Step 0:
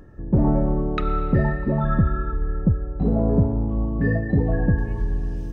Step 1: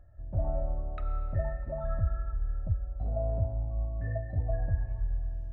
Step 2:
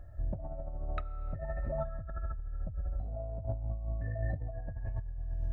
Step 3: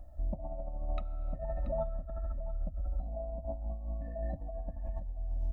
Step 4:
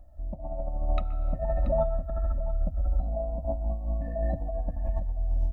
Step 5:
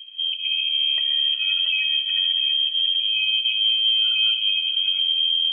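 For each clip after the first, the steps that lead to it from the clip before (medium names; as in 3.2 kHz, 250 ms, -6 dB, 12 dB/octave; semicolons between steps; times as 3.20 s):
FFT filter 100 Hz 0 dB, 180 Hz -21 dB, 280 Hz -19 dB, 450 Hz -22 dB, 640 Hz +4 dB, 950 Hz -15 dB, 1.4 kHz -9 dB, 2.5 kHz -14 dB, 4.6 kHz -19 dB; trim -7 dB
compressor with a negative ratio -37 dBFS, ratio -1; trim +1 dB
static phaser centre 420 Hz, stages 6; delay 681 ms -13.5 dB; trim +2.5 dB
level rider gain up to 11 dB; on a send at -17.5 dB: reverberation, pre-delay 121 ms; on the sum: trim -2.5 dB
frequency inversion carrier 3.2 kHz; peak limiter -21 dBFS, peak gain reduction 8.5 dB; feedback echo behind a high-pass 69 ms, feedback 76%, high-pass 2.2 kHz, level -10 dB; trim +6 dB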